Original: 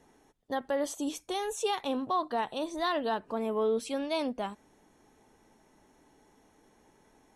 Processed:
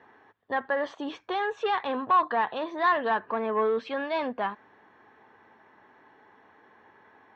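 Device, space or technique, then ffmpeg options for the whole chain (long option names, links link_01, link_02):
overdrive pedal into a guitar cabinet: -filter_complex "[0:a]asplit=2[link_01][link_02];[link_02]highpass=frequency=720:poles=1,volume=13dB,asoftclip=type=tanh:threshold=-19dB[link_03];[link_01][link_03]amix=inputs=2:normalize=0,lowpass=frequency=1400:poles=1,volume=-6dB,highpass=96,equalizer=frequency=100:width_type=q:width=4:gain=9,equalizer=frequency=160:width_type=q:width=4:gain=-4,equalizer=frequency=290:width_type=q:width=4:gain=-4,equalizer=frequency=590:width_type=q:width=4:gain=-3,equalizer=frequency=1100:width_type=q:width=4:gain=6,equalizer=frequency=1700:width_type=q:width=4:gain=10,lowpass=frequency=4100:width=0.5412,lowpass=frequency=4100:width=1.3066,volume=2dB"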